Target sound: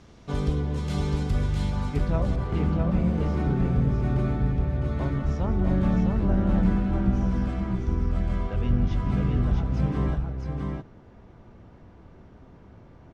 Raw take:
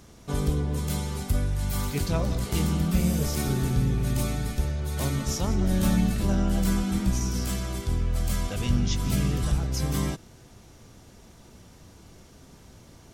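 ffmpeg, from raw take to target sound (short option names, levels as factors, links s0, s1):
-af "asetnsamples=n=441:p=0,asendcmd='1.7 lowpass f 1600',lowpass=4300,aecho=1:1:658:0.668"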